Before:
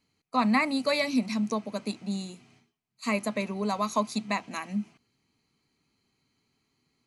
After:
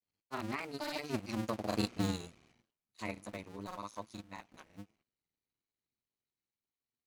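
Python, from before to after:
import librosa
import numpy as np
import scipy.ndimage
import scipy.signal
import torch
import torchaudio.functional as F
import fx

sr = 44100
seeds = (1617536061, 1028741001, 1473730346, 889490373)

y = fx.cycle_switch(x, sr, every=2, mode='muted')
y = fx.doppler_pass(y, sr, speed_mps=12, closest_m=3.5, pass_at_s=1.98)
y = fx.granulator(y, sr, seeds[0], grain_ms=100.0, per_s=20.0, spray_ms=35.0, spread_st=0)
y = F.gain(torch.from_numpy(y), 3.0).numpy()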